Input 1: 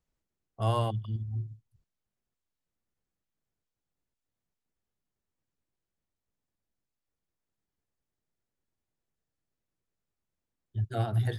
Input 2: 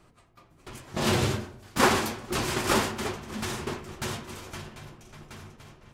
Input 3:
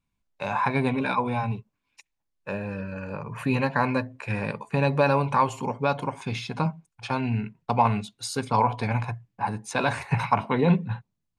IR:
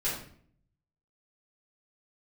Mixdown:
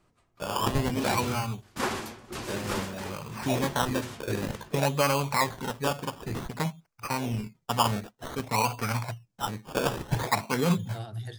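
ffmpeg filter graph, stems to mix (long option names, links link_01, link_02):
-filter_complex "[0:a]equalizer=frequency=6200:width=0.74:gain=13,volume=-9dB[link_01];[1:a]volume=-8.5dB[link_02];[2:a]equalizer=frequency=2400:width_type=o:width=0.45:gain=10,acrusher=samples=17:mix=1:aa=0.000001:lfo=1:lforange=10.2:lforate=0.54,volume=-4.5dB[link_03];[link_01][link_02][link_03]amix=inputs=3:normalize=0"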